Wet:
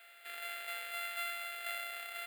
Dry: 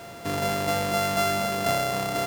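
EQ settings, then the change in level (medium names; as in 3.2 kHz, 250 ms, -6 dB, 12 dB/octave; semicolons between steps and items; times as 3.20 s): ladder high-pass 900 Hz, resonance 30%; static phaser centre 2.5 kHz, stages 4; -2.5 dB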